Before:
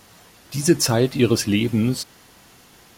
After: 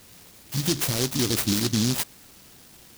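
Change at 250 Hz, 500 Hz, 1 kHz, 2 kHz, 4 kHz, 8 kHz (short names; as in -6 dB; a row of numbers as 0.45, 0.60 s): -7.0, -10.5, -6.0, -4.5, -0.5, -1.0 dB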